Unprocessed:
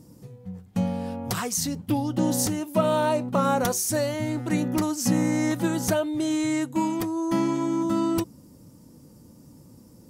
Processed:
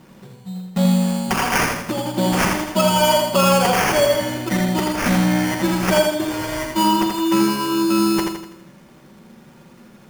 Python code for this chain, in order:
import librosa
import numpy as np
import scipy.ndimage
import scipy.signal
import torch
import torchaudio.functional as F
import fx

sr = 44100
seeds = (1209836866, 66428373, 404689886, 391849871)

p1 = fx.rider(x, sr, range_db=10, speed_s=0.5)
p2 = x + (p1 * librosa.db_to_amplitude(-3.0))
p3 = fx.low_shelf(p2, sr, hz=210.0, db=-10.5)
p4 = p3 + 0.94 * np.pad(p3, (int(5.3 * sr / 1000.0), 0))[:len(p3)]
p5 = fx.room_flutter(p4, sr, wall_m=7.4, rt60_s=0.21)
p6 = fx.sample_hold(p5, sr, seeds[0], rate_hz=3900.0, jitter_pct=0)
y = p6 + fx.echo_feedback(p6, sr, ms=82, feedback_pct=47, wet_db=-4.0, dry=0)